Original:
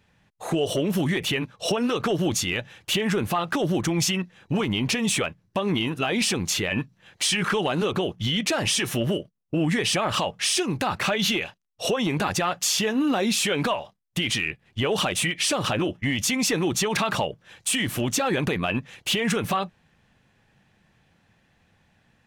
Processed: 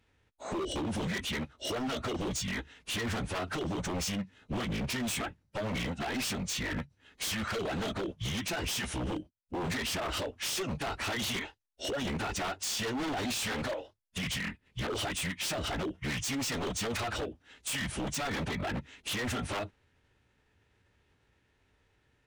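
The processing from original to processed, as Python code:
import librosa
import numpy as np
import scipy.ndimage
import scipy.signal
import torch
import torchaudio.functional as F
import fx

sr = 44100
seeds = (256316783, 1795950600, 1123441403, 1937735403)

y = fx.pitch_keep_formants(x, sr, semitones=-11.0)
y = 10.0 ** (-23.0 / 20.0) * (np.abs((y / 10.0 ** (-23.0 / 20.0) + 3.0) % 4.0 - 2.0) - 1.0)
y = y * 10.0 ** (-5.5 / 20.0)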